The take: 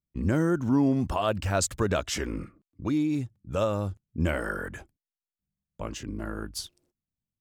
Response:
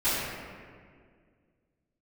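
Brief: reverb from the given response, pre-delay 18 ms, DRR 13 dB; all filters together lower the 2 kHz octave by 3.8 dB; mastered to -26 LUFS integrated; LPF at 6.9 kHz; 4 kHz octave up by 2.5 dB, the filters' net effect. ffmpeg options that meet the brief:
-filter_complex "[0:a]lowpass=6900,equalizer=f=2000:t=o:g=-7,equalizer=f=4000:t=o:g=6,asplit=2[s0][s1];[1:a]atrim=start_sample=2205,adelay=18[s2];[s1][s2]afir=irnorm=-1:irlink=0,volume=0.0473[s3];[s0][s3]amix=inputs=2:normalize=0,volume=1.41"

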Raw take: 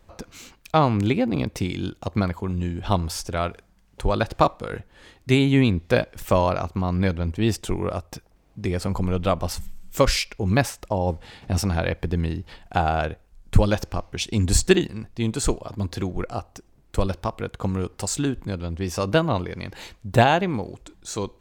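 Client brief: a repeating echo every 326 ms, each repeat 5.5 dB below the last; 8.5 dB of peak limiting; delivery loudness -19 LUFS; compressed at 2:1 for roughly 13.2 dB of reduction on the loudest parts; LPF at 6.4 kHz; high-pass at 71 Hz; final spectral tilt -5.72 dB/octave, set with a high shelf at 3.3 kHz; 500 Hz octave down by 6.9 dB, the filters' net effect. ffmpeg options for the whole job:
-af "highpass=71,lowpass=6400,equalizer=f=500:t=o:g=-9,highshelf=f=3300:g=-5.5,acompressor=threshold=0.0112:ratio=2,alimiter=level_in=1.26:limit=0.0631:level=0:latency=1,volume=0.794,aecho=1:1:326|652|978|1304|1630|1956|2282:0.531|0.281|0.149|0.079|0.0419|0.0222|0.0118,volume=8.41"

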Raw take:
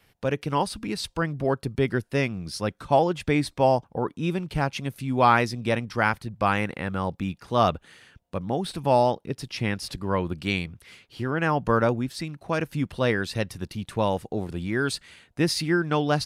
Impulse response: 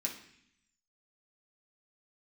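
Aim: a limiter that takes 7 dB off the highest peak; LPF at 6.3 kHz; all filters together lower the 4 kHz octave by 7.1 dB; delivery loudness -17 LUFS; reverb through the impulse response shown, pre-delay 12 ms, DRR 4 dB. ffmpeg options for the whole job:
-filter_complex "[0:a]lowpass=6300,equalizer=f=4000:t=o:g=-8.5,alimiter=limit=0.2:level=0:latency=1,asplit=2[s0][s1];[1:a]atrim=start_sample=2205,adelay=12[s2];[s1][s2]afir=irnorm=-1:irlink=0,volume=0.562[s3];[s0][s3]amix=inputs=2:normalize=0,volume=2.82"

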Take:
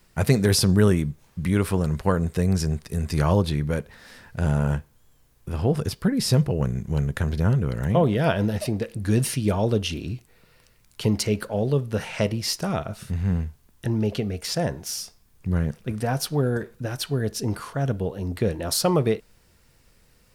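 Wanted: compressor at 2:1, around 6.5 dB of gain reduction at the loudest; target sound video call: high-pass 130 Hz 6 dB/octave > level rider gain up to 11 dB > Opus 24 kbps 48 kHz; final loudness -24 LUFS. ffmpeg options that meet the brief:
-af "acompressor=threshold=0.0562:ratio=2,highpass=f=130:p=1,dynaudnorm=m=3.55,volume=1.33" -ar 48000 -c:a libopus -b:a 24k

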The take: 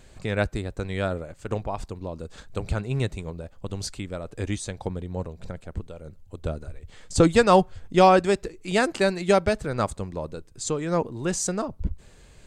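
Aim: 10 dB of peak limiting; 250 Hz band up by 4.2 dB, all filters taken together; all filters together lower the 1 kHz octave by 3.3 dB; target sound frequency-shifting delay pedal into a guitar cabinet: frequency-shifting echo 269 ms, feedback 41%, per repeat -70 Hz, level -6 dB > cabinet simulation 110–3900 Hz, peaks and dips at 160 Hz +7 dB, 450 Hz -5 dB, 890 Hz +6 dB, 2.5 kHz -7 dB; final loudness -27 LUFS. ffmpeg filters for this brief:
-filter_complex "[0:a]equalizer=f=250:t=o:g=5,equalizer=f=1000:t=o:g=-8.5,alimiter=limit=0.237:level=0:latency=1,asplit=6[s0][s1][s2][s3][s4][s5];[s1]adelay=269,afreqshift=-70,volume=0.501[s6];[s2]adelay=538,afreqshift=-140,volume=0.207[s7];[s3]adelay=807,afreqshift=-210,volume=0.0841[s8];[s4]adelay=1076,afreqshift=-280,volume=0.0347[s9];[s5]adelay=1345,afreqshift=-350,volume=0.0141[s10];[s0][s6][s7][s8][s9][s10]amix=inputs=6:normalize=0,highpass=110,equalizer=f=160:t=q:w=4:g=7,equalizer=f=450:t=q:w=4:g=-5,equalizer=f=890:t=q:w=4:g=6,equalizer=f=2500:t=q:w=4:g=-7,lowpass=f=3900:w=0.5412,lowpass=f=3900:w=1.3066,volume=1.12"

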